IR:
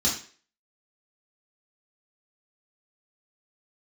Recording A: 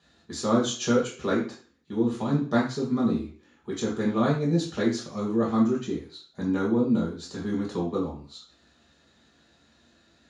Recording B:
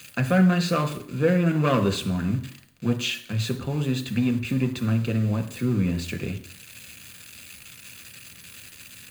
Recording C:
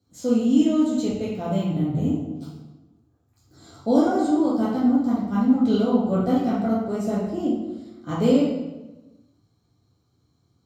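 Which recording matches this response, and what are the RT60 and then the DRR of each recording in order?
A; 0.45, 0.60, 1.1 seconds; −6.0, 6.0, −8.5 decibels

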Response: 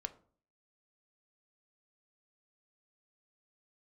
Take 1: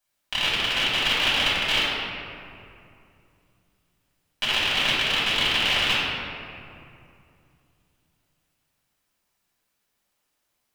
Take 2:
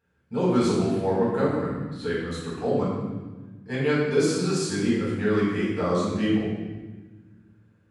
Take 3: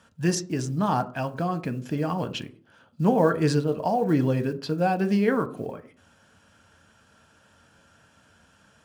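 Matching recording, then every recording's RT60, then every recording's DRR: 3; 2.6, 1.3, 0.50 seconds; −10.0, −8.0, 8.5 decibels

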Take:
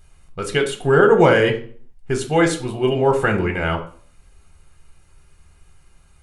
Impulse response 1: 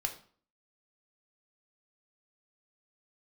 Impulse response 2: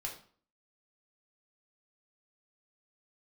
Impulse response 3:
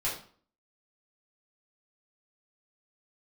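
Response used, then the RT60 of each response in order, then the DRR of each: 1; 0.45, 0.45, 0.45 seconds; 4.0, −1.0, −8.0 decibels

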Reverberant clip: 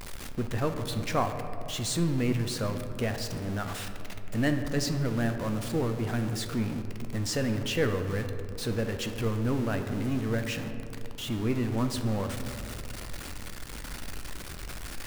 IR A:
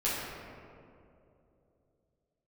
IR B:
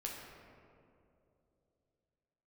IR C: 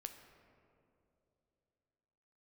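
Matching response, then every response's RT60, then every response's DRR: C; 2.8, 2.8, 2.9 seconds; −9.5, −2.5, 6.0 decibels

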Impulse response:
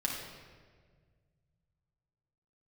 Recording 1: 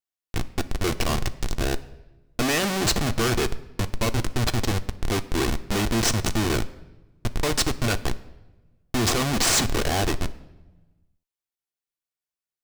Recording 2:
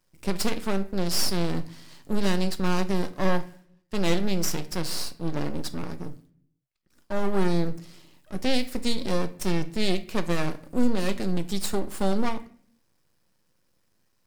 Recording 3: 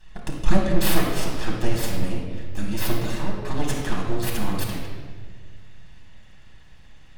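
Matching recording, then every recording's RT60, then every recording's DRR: 3; 1.1, 0.55, 1.7 seconds; 9.0, 9.5, −2.5 decibels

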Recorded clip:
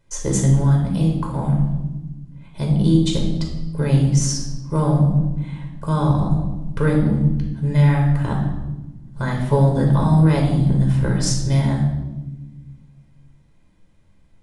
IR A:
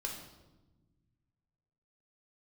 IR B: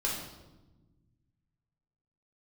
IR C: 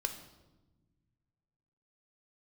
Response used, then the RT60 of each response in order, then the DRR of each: A; 1.1 s, 1.1 s, non-exponential decay; 0.0, −4.5, 6.0 decibels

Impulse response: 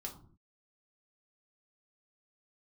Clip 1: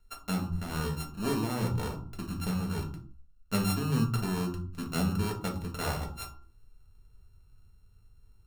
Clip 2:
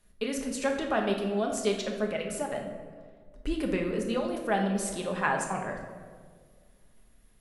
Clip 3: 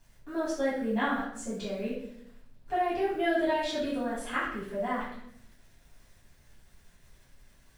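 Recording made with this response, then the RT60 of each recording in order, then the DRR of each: 1; 0.50, 1.8, 0.70 seconds; 0.0, 1.0, −9.5 decibels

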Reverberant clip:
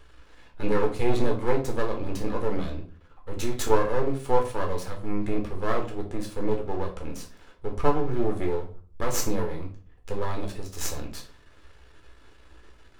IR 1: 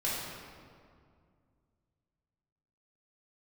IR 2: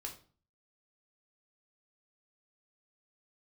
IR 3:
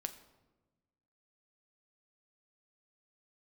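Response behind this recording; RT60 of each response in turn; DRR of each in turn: 2; 2.2, 0.40, 1.2 seconds; −8.0, 1.0, 7.5 decibels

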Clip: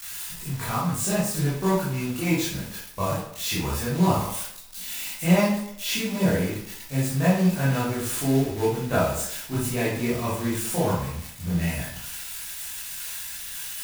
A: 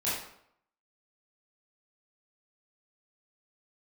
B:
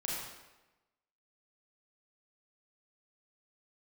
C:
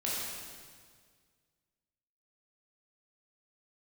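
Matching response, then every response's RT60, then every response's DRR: A; 0.70, 1.1, 1.8 seconds; −10.5, −5.0, −7.0 decibels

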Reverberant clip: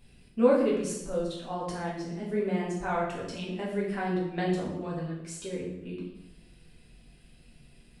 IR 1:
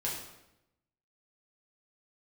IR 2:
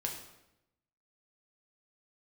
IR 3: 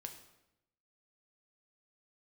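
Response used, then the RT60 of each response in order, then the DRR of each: 1; 0.90, 0.90, 0.90 seconds; −5.5, 0.0, 4.0 decibels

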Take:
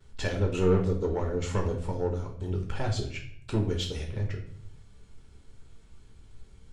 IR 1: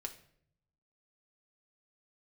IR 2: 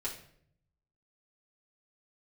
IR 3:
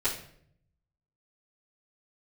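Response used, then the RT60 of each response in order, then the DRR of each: 3; 0.65, 0.65, 0.65 seconds; 3.0, −6.5, −14.0 decibels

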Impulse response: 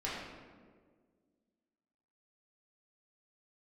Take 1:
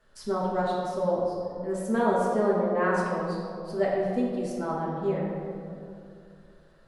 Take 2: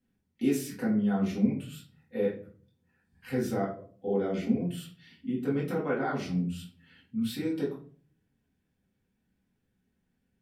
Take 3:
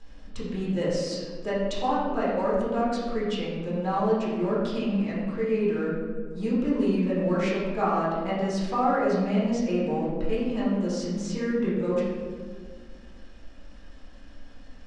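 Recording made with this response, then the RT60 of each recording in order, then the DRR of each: 3; 2.5, 0.45, 1.7 seconds; −6.0, −7.0, −8.5 decibels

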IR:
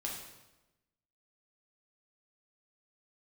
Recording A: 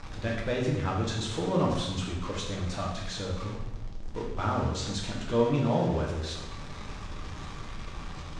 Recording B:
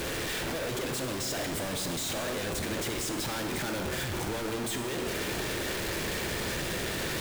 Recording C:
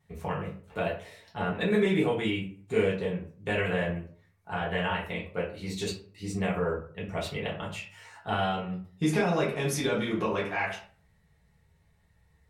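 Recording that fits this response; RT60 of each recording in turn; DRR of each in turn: A; 1.0, 2.3, 0.45 seconds; −2.5, 4.5, −6.5 decibels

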